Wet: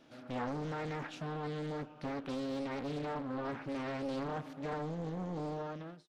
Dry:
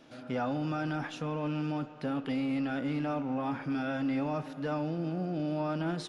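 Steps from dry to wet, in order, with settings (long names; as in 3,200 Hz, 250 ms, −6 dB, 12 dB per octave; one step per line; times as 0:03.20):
fade-out on the ending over 0.61 s
highs frequency-modulated by the lows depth 0.84 ms
level −5 dB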